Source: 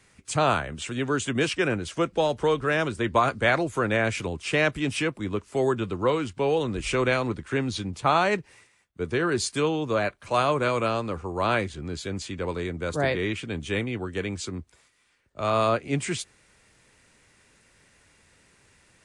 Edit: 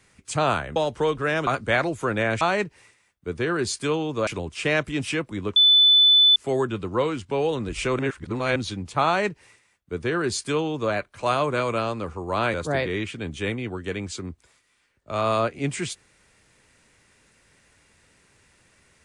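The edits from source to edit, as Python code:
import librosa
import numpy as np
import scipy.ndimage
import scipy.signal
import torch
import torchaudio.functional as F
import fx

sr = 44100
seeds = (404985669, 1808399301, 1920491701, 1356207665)

y = fx.edit(x, sr, fx.cut(start_s=0.76, length_s=1.43),
    fx.cut(start_s=2.9, length_s=0.31),
    fx.insert_tone(at_s=5.44, length_s=0.8, hz=3500.0, db=-12.0),
    fx.reverse_span(start_s=7.07, length_s=0.57),
    fx.duplicate(start_s=8.14, length_s=1.86, to_s=4.15),
    fx.cut(start_s=11.62, length_s=1.21), tone=tone)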